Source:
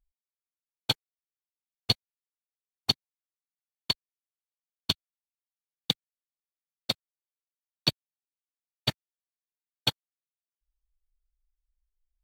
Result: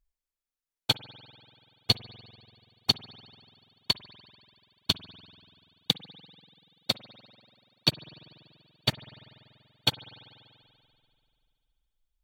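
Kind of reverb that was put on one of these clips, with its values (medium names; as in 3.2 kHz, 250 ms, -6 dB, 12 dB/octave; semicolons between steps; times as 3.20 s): spring tank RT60 2.5 s, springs 48 ms, chirp 25 ms, DRR 15 dB; trim +1.5 dB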